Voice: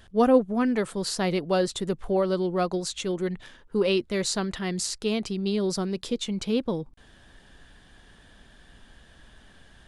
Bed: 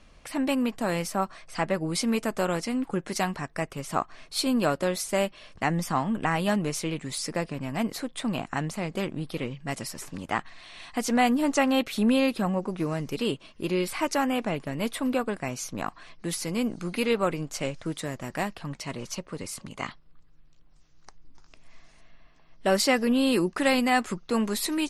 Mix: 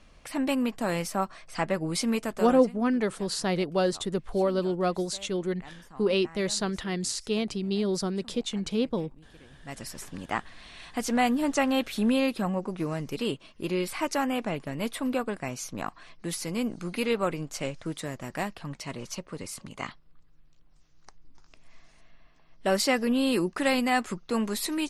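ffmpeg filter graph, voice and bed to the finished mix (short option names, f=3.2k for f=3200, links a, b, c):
-filter_complex "[0:a]adelay=2250,volume=-1.5dB[a];[1:a]volume=19.5dB,afade=t=out:st=2.11:d=0.66:silence=0.0841395,afade=t=in:st=9.49:d=0.49:silence=0.0944061[b];[a][b]amix=inputs=2:normalize=0"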